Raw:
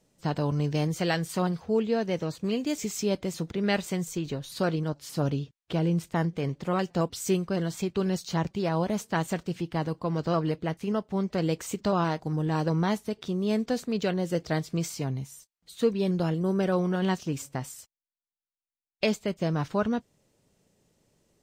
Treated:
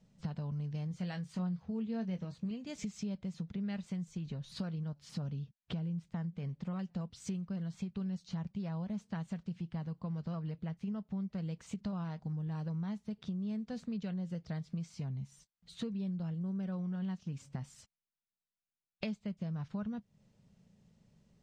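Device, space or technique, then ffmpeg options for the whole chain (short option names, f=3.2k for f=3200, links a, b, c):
jukebox: -filter_complex "[0:a]lowpass=5.6k,lowshelf=f=250:t=q:w=3:g=6.5,acompressor=threshold=-34dB:ratio=5,asettb=1/sr,asplit=3[a][b][c];[a]atrim=end=0.894[d];[b]atrim=start=0.89:end=2.51,asetpts=PTS-STARTPTS,afade=t=in:d=0.004:c=qsin,afade=t=out:st=1.616:d=0.004:c=qsin,asplit=2[e][f];[f]adelay=22,volume=-9dB[g];[e][g]amix=inputs=2:normalize=0,atrim=end_sample=71442[h];[c]atrim=start=2.506[i];[d][h]acrossfade=d=0.004:c1=hsin:c2=qsin[j];[j][i]acrossfade=d=0.004:c1=qsin:c2=hsin,volume=-4dB"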